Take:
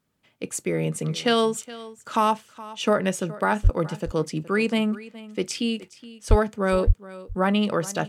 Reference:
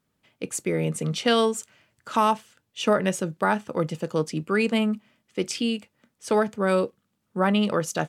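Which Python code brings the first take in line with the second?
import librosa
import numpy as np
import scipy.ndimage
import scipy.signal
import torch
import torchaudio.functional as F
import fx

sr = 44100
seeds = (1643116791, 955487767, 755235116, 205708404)

y = fx.fix_deplosive(x, sr, at_s=(3.63, 6.29, 6.86))
y = fx.fix_echo_inverse(y, sr, delay_ms=419, level_db=-18.0)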